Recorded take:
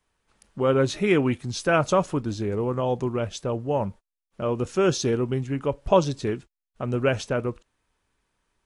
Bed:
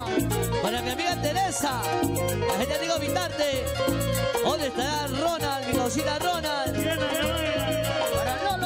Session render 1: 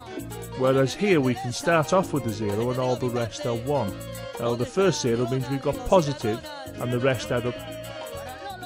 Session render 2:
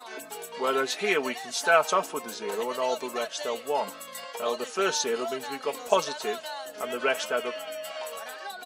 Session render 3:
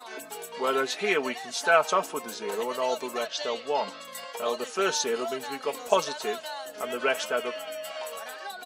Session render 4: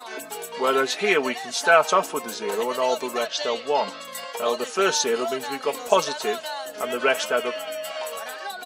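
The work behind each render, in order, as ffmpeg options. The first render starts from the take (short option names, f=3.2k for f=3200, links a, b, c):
-filter_complex "[1:a]volume=-10dB[a];[0:a][a]amix=inputs=2:normalize=0"
-af "highpass=600,aecho=1:1:4.6:0.66"
-filter_complex "[0:a]asettb=1/sr,asplit=3[a][b][c];[a]atrim=end=0.874[d];[b]atrim=start=0.87:end=2.02,asetpts=PTS-STARTPTS,afade=t=in:d=0.004:c=qsin,afade=t=out:st=1.146:d=0.004:c=qsin,highshelf=f=9.7k:g=-7[e];[c]atrim=start=2.016[f];[d][e]acrossfade=d=0.004:c1=hsin:c2=qsin[g];[g][f]acrossfade=d=0.004:c1=qsin:c2=hsin,asettb=1/sr,asplit=3[h][i][j];[h]atrim=end=3.264[k];[i]atrim=start=3.26:end=4.05,asetpts=PTS-STARTPTS,afade=t=in:d=0.004:c=qsin,afade=t=out:st=0.786:d=0.004:c=qsin,lowpass=f=4.7k:t=q:w=1.6[l];[j]atrim=start=4.046[m];[k][l]acrossfade=d=0.004:c1=hsin:c2=qsin[n];[n][m]acrossfade=d=0.004:c1=qsin:c2=hsin"
-af "volume=5dB,alimiter=limit=-3dB:level=0:latency=1"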